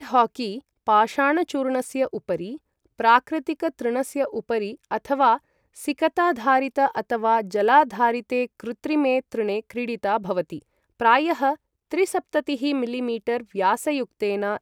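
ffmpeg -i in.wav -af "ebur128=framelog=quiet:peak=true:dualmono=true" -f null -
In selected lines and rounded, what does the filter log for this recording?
Integrated loudness:
  I:         -20.0 LUFS
  Threshold: -30.3 LUFS
Loudness range:
  LRA:         3.1 LU
  Threshold: -40.2 LUFS
  LRA low:   -21.6 LUFS
  LRA high:  -18.5 LUFS
True peak:
  Peak:       -4.2 dBFS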